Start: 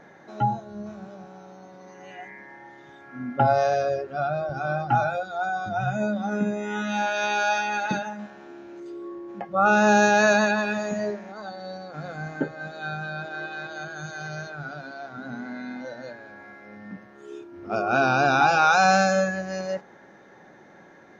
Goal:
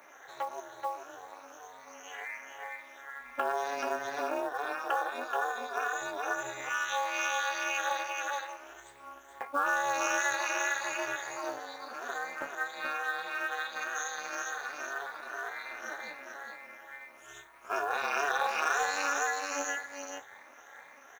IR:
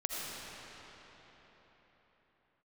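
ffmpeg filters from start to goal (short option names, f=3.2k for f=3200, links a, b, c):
-filter_complex "[0:a]afftfilt=real='re*pow(10,10/40*sin(2*PI*(0.94*log(max(b,1)*sr/1024/100)/log(2)-(2.1)*(pts-256)/sr)))':imag='im*pow(10,10/40*sin(2*PI*(0.94*log(max(b,1)*sr/1024/100)/log(2)-(2.1)*(pts-256)/sr)))':win_size=1024:overlap=0.75,highpass=f=700:w=0.5412,highpass=f=700:w=1.3066,asplit=2[a][b];[b]adelay=13,volume=-13dB[c];[a][c]amix=inputs=2:normalize=0,asplit=2[d][e];[e]aecho=0:1:429:0.501[f];[d][f]amix=inputs=2:normalize=0,acontrast=22,aemphasis=mode=production:type=75fm,flanger=delay=8.7:depth=6.6:regen=-37:speed=0.14:shape=sinusoidal,equalizer=f=4.5k:t=o:w=0.38:g=-11.5,bandreject=f=5.1k:w=7.3,tremolo=f=290:d=0.974,acrusher=bits=6:mode=log:mix=0:aa=0.000001,acompressor=threshold=-31dB:ratio=3,volume=1.5dB"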